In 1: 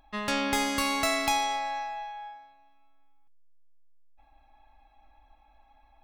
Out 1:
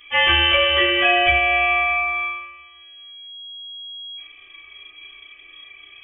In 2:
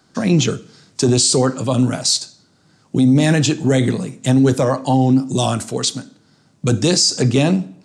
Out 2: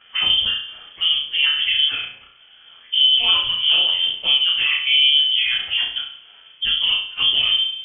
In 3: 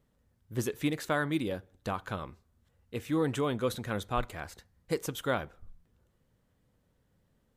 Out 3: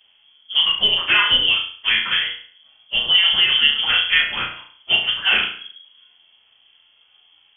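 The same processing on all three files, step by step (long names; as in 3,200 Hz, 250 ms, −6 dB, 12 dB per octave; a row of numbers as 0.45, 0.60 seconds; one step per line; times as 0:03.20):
partials spread apart or drawn together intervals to 113%
low-shelf EQ 61 Hz −7 dB
in parallel at −1 dB: brickwall limiter −17 dBFS
on the sum: downward compressor 2.5 to 1, threshold −28 dBFS
on a send: flutter between parallel walls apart 5.9 metres, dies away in 0.48 s
on the sum: voice inversion scrambler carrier 3,300 Hz
loudness normalisation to −16 LKFS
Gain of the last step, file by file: +13.5, +5.0, +13.0 decibels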